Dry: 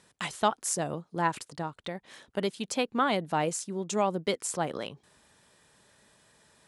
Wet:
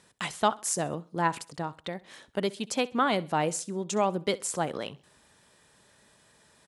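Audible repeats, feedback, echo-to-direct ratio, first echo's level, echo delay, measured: 2, 36%, -20.5 dB, -21.0 dB, 65 ms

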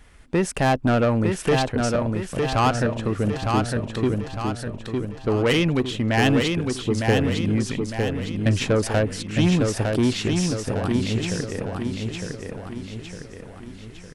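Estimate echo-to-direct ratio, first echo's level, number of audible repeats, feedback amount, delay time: -3.0 dB, -4.0 dB, 6, 49%, 907 ms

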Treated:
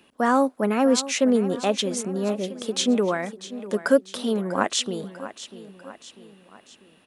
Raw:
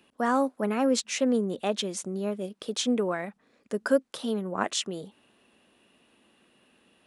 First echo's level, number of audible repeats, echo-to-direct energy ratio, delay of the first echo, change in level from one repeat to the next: -14.5 dB, 3, -13.5 dB, 645 ms, -6.0 dB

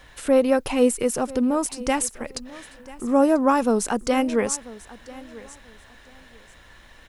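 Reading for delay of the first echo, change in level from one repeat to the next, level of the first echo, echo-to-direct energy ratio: 990 ms, -13.0 dB, -19.5 dB, -19.5 dB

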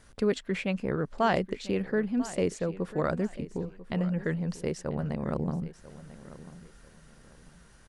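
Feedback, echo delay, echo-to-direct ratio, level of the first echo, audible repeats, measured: 28%, 993 ms, -16.0 dB, -16.5 dB, 2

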